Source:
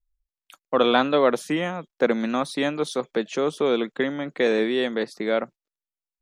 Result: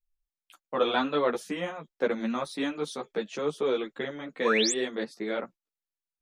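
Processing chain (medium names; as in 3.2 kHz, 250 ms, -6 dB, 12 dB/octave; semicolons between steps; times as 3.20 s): painted sound rise, 4.45–4.73 s, 910–8700 Hz -21 dBFS; three-phase chorus; trim -3.5 dB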